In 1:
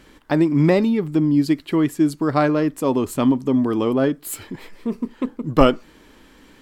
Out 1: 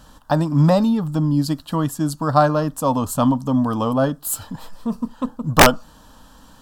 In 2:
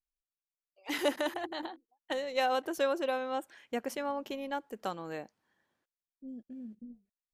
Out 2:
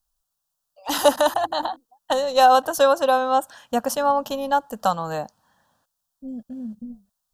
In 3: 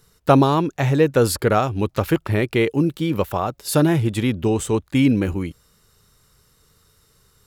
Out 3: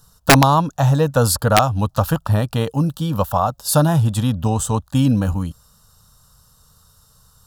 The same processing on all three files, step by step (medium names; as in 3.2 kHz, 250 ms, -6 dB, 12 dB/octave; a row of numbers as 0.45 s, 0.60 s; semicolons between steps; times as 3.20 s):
static phaser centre 900 Hz, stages 4; integer overflow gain 8 dB; peak normalisation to -1.5 dBFS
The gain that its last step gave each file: +6.5 dB, +17.5 dB, +6.5 dB